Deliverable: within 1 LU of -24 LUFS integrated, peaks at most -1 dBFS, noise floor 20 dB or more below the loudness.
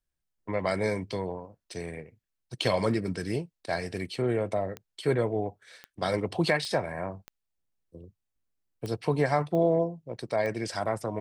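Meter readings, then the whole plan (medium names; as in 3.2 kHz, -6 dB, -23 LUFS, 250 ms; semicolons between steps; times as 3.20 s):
clicks found 7; loudness -30.0 LUFS; peak level -10.5 dBFS; loudness target -24.0 LUFS
-> de-click; trim +6 dB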